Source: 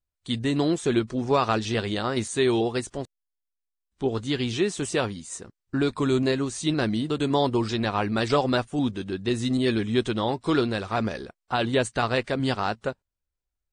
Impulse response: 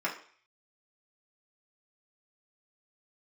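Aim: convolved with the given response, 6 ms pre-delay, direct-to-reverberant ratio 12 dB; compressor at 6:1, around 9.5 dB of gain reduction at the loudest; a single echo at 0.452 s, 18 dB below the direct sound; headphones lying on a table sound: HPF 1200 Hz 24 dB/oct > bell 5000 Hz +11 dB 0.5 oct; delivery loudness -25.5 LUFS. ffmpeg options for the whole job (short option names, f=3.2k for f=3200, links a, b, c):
-filter_complex "[0:a]acompressor=threshold=-28dB:ratio=6,aecho=1:1:452:0.126,asplit=2[a][b];[1:a]atrim=start_sample=2205,adelay=6[c];[b][c]afir=irnorm=-1:irlink=0,volume=-20dB[d];[a][d]amix=inputs=2:normalize=0,highpass=f=1.2k:w=0.5412,highpass=f=1.2k:w=1.3066,equalizer=f=5k:t=o:w=0.5:g=11,volume=11.5dB"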